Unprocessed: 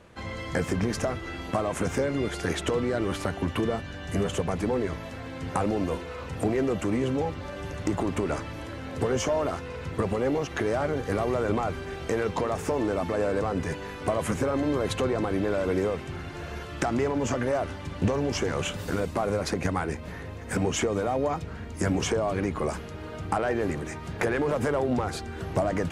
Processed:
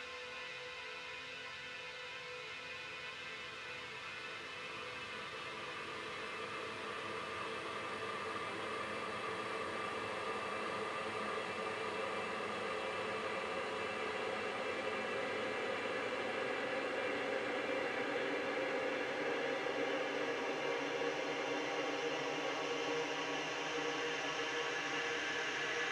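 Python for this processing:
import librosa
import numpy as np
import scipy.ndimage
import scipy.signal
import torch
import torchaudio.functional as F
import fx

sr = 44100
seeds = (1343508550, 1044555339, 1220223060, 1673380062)

y = fx.filter_sweep_bandpass(x, sr, from_hz=4500.0, to_hz=1300.0, start_s=9.12, end_s=11.86, q=1.1)
y = fx.paulstretch(y, sr, seeds[0], factor=34.0, window_s=0.5, from_s=9.72)
y = y * 10.0 ** (2.0 / 20.0)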